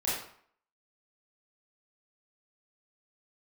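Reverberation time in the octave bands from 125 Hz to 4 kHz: 0.50, 0.55, 0.55, 0.60, 0.55, 0.45 seconds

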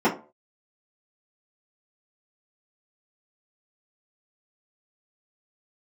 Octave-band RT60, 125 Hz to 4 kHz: 0.35, 0.35, 0.40, 0.35, 0.25, 0.20 seconds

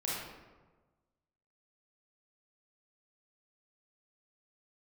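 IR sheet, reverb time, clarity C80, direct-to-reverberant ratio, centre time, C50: 1.3 s, 1.5 dB, −7.0 dB, 87 ms, −2.0 dB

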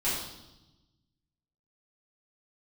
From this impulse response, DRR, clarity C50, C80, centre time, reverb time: −11.5 dB, 1.0 dB, 4.5 dB, 60 ms, 0.95 s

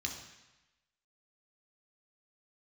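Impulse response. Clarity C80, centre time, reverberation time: 8.5 dB, 30 ms, 1.0 s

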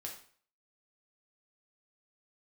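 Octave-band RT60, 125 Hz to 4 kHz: 0.50, 0.45, 0.50, 0.50, 0.45, 0.45 seconds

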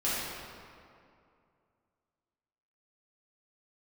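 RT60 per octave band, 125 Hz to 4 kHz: 2.7, 2.6, 2.5, 2.4, 1.9, 1.4 seconds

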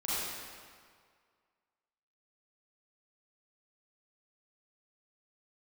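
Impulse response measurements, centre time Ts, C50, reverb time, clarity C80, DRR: 153 ms, −6.0 dB, 1.9 s, −2.5 dB, −10.5 dB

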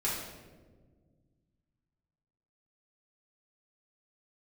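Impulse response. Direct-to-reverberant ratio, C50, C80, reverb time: −8.0 dB, 1.5 dB, 4.0 dB, 1.5 s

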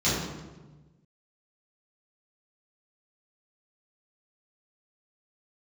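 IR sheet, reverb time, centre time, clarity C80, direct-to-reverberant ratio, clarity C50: 1.2 s, 78 ms, 2.5 dB, −11.5 dB, −0.5 dB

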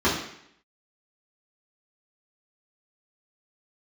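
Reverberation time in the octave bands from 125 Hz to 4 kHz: 0.65, 0.70, 0.70, 0.70, 0.75, 0.70 seconds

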